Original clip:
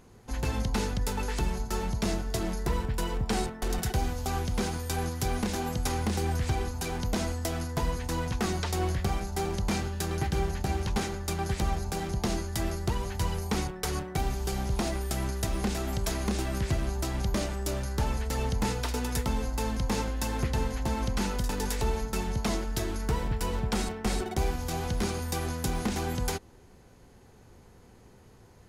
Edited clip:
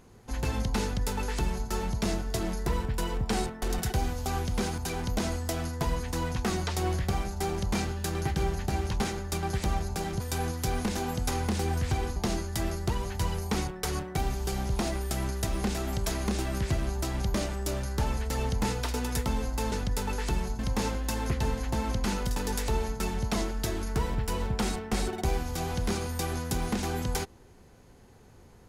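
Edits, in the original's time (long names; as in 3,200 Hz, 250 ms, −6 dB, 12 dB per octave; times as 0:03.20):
0:00.82–0:01.69: duplicate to 0:19.72
0:04.78–0:06.74: move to 0:12.16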